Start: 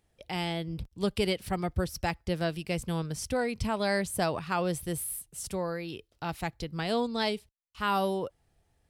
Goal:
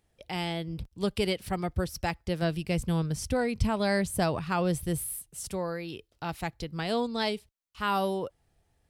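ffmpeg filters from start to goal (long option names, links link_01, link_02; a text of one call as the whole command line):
ffmpeg -i in.wav -filter_complex "[0:a]asettb=1/sr,asplit=3[link_01][link_02][link_03];[link_01]atrim=end=2.424[link_04];[link_02]atrim=start=2.42:end=5.09,asetpts=PTS-STARTPTS,afade=type=in:duration=0.004:curve=qsin,afade=type=out:start_time=2.666:duration=0.004:curve=qsin,lowshelf=frequency=200:gain=8[link_05];[link_03]atrim=start=5.086[link_06];[link_04][link_05]acrossfade=duration=0.004:curve1=hsin:curve2=qsin[link_07];[link_07][link_06]acrossfade=duration=0.004:curve1=qsin:curve2=hsin" out.wav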